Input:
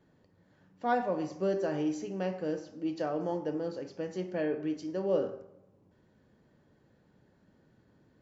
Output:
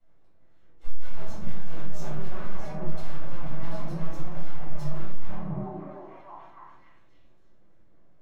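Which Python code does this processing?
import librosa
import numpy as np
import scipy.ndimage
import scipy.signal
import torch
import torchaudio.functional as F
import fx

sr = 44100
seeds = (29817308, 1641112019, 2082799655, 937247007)

y = np.abs(x)
y = fx.low_shelf(y, sr, hz=270.0, db=4.0)
y = fx.notch(y, sr, hz=4800.0, q=10.0)
y = fx.echo_stepped(y, sr, ms=287, hz=180.0, octaves=0.7, feedback_pct=70, wet_db=-4)
y = 10.0 ** (-36.0 / 20.0) * np.tanh(y / 10.0 ** (-36.0 / 20.0))
y = fx.doubler(y, sr, ms=25.0, db=-10.5)
y = fx.room_shoebox(y, sr, seeds[0], volume_m3=610.0, walls='furnished', distance_m=7.1)
y = fx.band_widen(y, sr, depth_pct=40)
y = y * 10.0 ** (-3.5 / 20.0)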